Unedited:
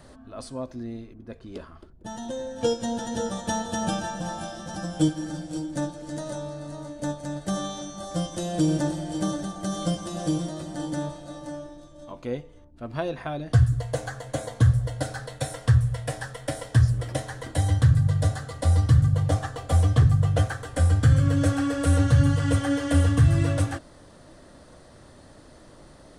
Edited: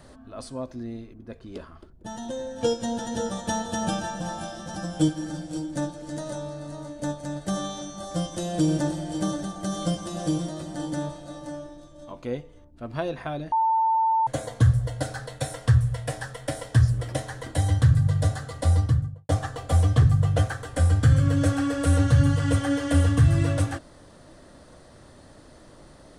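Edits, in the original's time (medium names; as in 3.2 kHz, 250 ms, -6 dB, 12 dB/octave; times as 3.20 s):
13.52–14.27 s: bleep 894 Hz -18.5 dBFS
18.68–19.29 s: studio fade out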